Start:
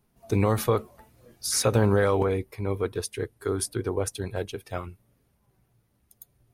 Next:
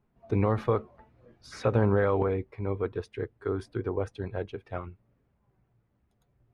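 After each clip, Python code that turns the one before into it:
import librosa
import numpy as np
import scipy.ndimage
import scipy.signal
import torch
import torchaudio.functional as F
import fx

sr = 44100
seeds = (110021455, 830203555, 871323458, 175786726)

y = scipy.signal.sosfilt(scipy.signal.butter(2, 2100.0, 'lowpass', fs=sr, output='sos'), x)
y = F.gain(torch.from_numpy(y), -2.5).numpy()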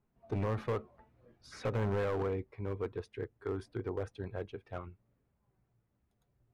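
y = np.clip(x, -10.0 ** (-22.5 / 20.0), 10.0 ** (-22.5 / 20.0))
y = F.gain(torch.from_numpy(y), -6.0).numpy()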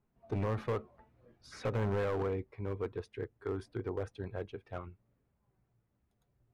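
y = x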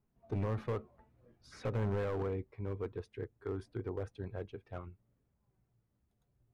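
y = fx.low_shelf(x, sr, hz=370.0, db=4.5)
y = F.gain(torch.from_numpy(y), -4.5).numpy()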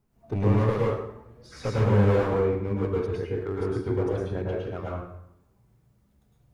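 y = fx.rev_plate(x, sr, seeds[0], rt60_s=0.77, hf_ratio=0.75, predelay_ms=95, drr_db=-5.0)
y = F.gain(torch.from_numpy(y), 7.0).numpy()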